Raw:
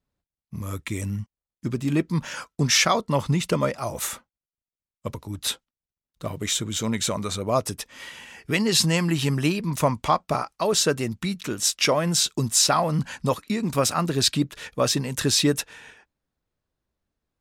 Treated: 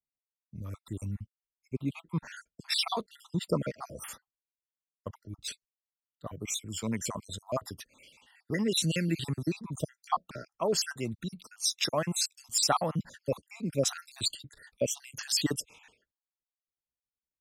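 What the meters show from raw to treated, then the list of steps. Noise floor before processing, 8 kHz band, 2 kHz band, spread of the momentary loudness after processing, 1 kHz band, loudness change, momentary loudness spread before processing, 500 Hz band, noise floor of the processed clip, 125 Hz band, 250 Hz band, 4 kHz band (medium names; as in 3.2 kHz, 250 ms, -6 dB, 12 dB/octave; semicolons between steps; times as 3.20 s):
under -85 dBFS, -9.0 dB, -11.5 dB, 18 LU, -10.0 dB, -9.0 dB, 16 LU, -9.0 dB, under -85 dBFS, -10.0 dB, -9.5 dB, -8.5 dB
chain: random holes in the spectrogram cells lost 57%; three bands expanded up and down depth 40%; trim -6.5 dB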